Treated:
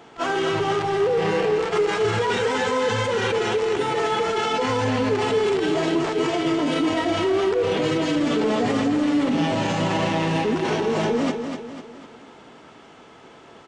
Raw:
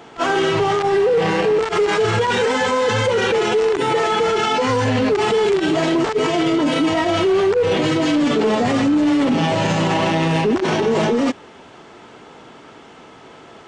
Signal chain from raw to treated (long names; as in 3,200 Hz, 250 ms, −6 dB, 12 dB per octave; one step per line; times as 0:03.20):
repeating echo 249 ms, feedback 44%, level −7 dB
level −5.5 dB